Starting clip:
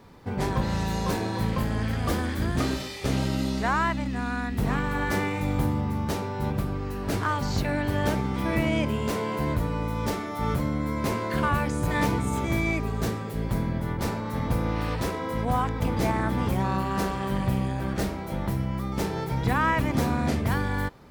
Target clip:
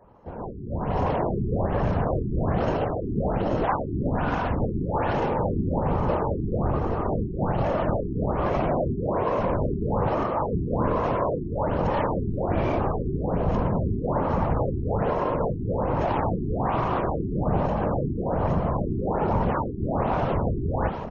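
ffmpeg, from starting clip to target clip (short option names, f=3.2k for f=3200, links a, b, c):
-filter_complex "[0:a]acrossover=split=600|1700[a][b][c];[c]acrusher=samples=37:mix=1:aa=0.000001[d];[a][b][d]amix=inputs=3:normalize=0,asoftclip=type=tanh:threshold=-28.5dB,firequalizer=gain_entry='entry(160,0);entry(220,-5);entry(560,8);entry(1800,-2);entry(2600,2);entry(4300,-8)':delay=0.05:min_phase=1,dynaudnorm=f=600:g=3:m=15.5dB,bass=f=250:g=1,treble=f=4k:g=8,aecho=1:1:630|1260|1890|2520|3150:0.224|0.105|0.0495|0.0232|0.0109,alimiter=limit=-11.5dB:level=0:latency=1:release=29,afftfilt=real='hypot(re,im)*cos(2*PI*random(0))':imag='hypot(re,im)*sin(2*PI*random(1))':win_size=512:overlap=0.75,afftfilt=real='re*lt(b*sr/1024,400*pow(6900/400,0.5+0.5*sin(2*PI*1.2*pts/sr)))':imag='im*lt(b*sr/1024,400*pow(6900/400,0.5+0.5*sin(2*PI*1.2*pts/sr)))':win_size=1024:overlap=0.75"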